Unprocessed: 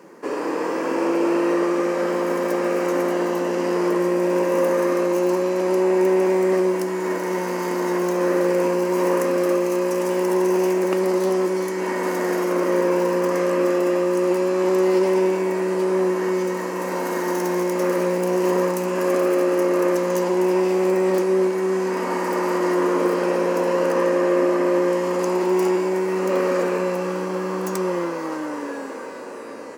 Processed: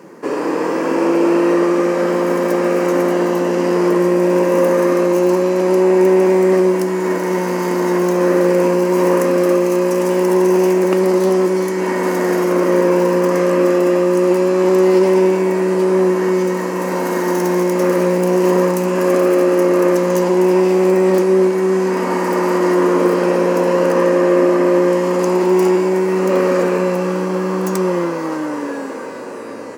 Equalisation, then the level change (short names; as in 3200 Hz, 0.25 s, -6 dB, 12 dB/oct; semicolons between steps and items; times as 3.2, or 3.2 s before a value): low shelf 150 Hz +11.5 dB; +4.5 dB